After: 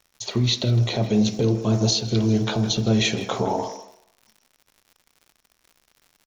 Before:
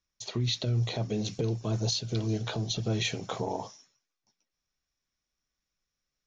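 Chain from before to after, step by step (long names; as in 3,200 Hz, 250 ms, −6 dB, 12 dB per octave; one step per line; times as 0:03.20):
pitch vibrato 0.77 Hz 6.2 cents
far-end echo of a speakerphone 160 ms, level −12 dB
on a send at −8.5 dB: convolution reverb RT60 0.75 s, pre-delay 3 ms
on the sum: surface crackle 130 per second −49 dBFS
level +8 dB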